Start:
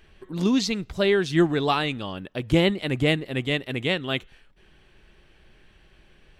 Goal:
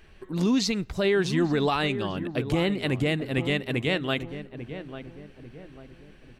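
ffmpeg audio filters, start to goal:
ffmpeg -i in.wav -filter_complex "[0:a]equalizer=frequency=3300:width=5.9:gain=-4.5,alimiter=limit=-17dB:level=0:latency=1:release=51,asplit=2[link_01][link_02];[link_02]adelay=845,lowpass=frequency=1100:poles=1,volume=-10dB,asplit=2[link_03][link_04];[link_04]adelay=845,lowpass=frequency=1100:poles=1,volume=0.44,asplit=2[link_05][link_06];[link_06]adelay=845,lowpass=frequency=1100:poles=1,volume=0.44,asplit=2[link_07][link_08];[link_08]adelay=845,lowpass=frequency=1100:poles=1,volume=0.44,asplit=2[link_09][link_10];[link_10]adelay=845,lowpass=frequency=1100:poles=1,volume=0.44[link_11];[link_01][link_03][link_05][link_07][link_09][link_11]amix=inputs=6:normalize=0,volume=1.5dB" out.wav

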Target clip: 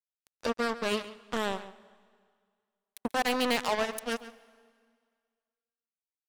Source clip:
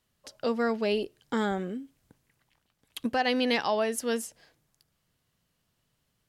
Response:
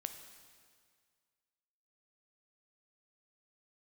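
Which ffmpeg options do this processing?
-filter_complex "[0:a]acrusher=bits=3:mix=0:aa=0.5,asplit=2[link_01][link_02];[1:a]atrim=start_sample=2205,highshelf=frequency=5800:gain=-5,adelay=139[link_03];[link_02][link_03]afir=irnorm=-1:irlink=0,volume=-11.5dB[link_04];[link_01][link_04]amix=inputs=2:normalize=0,volume=-2.5dB"

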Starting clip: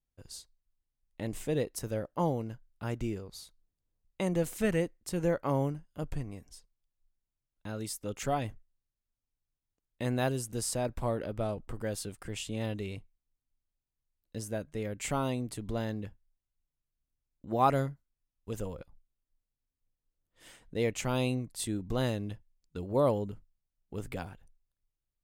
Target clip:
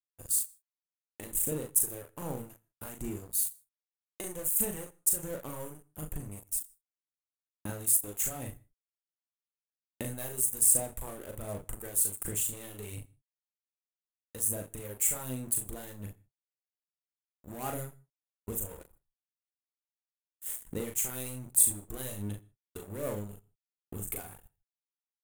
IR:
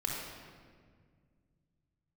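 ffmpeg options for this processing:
-filter_complex "[0:a]asoftclip=type=tanh:threshold=-27dB,acompressor=threshold=-45dB:ratio=5,aphaser=in_gain=1:out_gain=1:delay=2.8:decay=0.47:speed=1.3:type=sinusoidal,bandreject=frequency=60:width_type=h:width=6,bandreject=frequency=120:width_type=h:width=6,bandreject=frequency=180:width_type=h:width=6,aecho=1:1:39|69:0.596|0.178,aeval=exprs='sgn(val(0))*max(abs(val(0))-0.00211,0)':channel_layout=same,aexciter=amount=15.9:drive=3.4:freq=7400,agate=range=-33dB:threshold=-53dB:ratio=3:detection=peak,asplit=2[link_01][link_02];[1:a]atrim=start_sample=2205,atrim=end_sample=3528,adelay=84[link_03];[link_02][link_03]afir=irnorm=-1:irlink=0,volume=-26dB[link_04];[link_01][link_04]amix=inputs=2:normalize=0,volume=5dB"

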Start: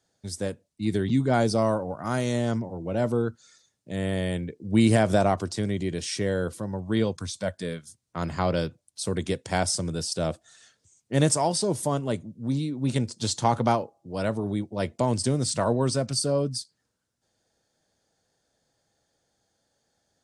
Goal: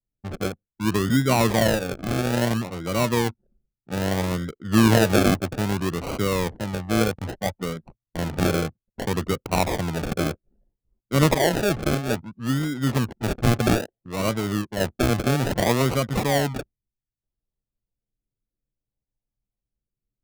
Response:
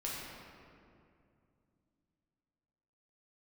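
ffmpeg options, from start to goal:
-af "acrusher=samples=36:mix=1:aa=0.000001:lfo=1:lforange=21.6:lforate=0.61,anlmdn=0.251,volume=3dB"

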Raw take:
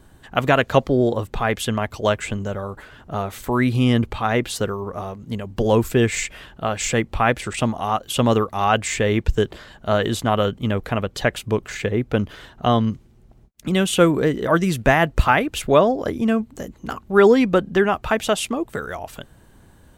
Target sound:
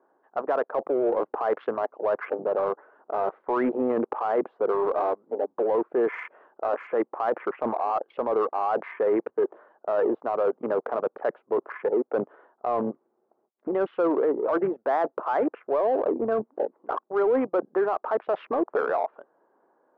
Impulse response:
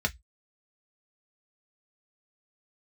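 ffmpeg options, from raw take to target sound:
-filter_complex "[0:a]highpass=frequency=390:width=0.5412,highpass=frequency=390:width=1.3066,afwtdn=0.0282,lowpass=frequency=1200:width=0.5412,lowpass=frequency=1200:width=1.3066,areverse,acompressor=threshold=-28dB:ratio=8,areverse,alimiter=level_in=2.5dB:limit=-24dB:level=0:latency=1:release=12,volume=-2.5dB,asplit=2[link_01][link_02];[link_02]asoftclip=type=tanh:threshold=-35dB,volume=-7.5dB[link_03];[link_01][link_03]amix=inputs=2:normalize=0,volume=8.5dB"

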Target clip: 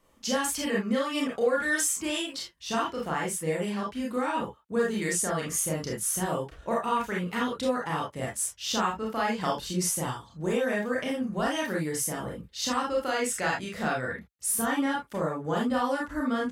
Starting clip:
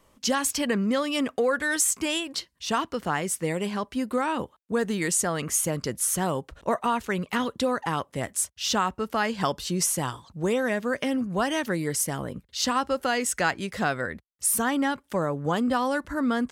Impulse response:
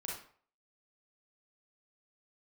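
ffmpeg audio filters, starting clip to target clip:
-filter_complex "[1:a]atrim=start_sample=2205,atrim=end_sample=4410,asetrate=52920,aresample=44100[link_01];[0:a][link_01]afir=irnorm=-1:irlink=0"

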